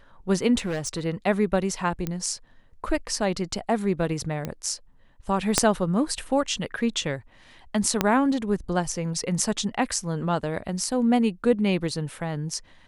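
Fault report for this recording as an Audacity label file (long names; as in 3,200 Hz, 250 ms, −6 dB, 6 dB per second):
0.580000	1.060000	clipping −24 dBFS
2.070000	2.070000	click −14 dBFS
4.450000	4.450000	click −16 dBFS
5.580000	5.580000	click −3 dBFS
8.010000	8.010000	click −5 dBFS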